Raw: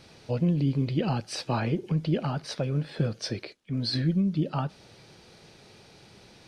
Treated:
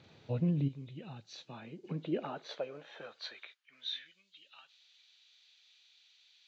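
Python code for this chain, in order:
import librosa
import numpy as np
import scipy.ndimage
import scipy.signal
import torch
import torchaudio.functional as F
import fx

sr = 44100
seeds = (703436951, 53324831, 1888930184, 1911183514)

y = fx.freq_compress(x, sr, knee_hz=2700.0, ratio=1.5)
y = fx.filter_sweep_highpass(y, sr, from_hz=98.0, to_hz=3300.0, start_s=1.13, end_s=4.28, q=1.4)
y = fx.pre_emphasis(y, sr, coefficient=0.8, at=(0.67, 1.83), fade=0.02)
y = y * librosa.db_to_amplitude(-8.0)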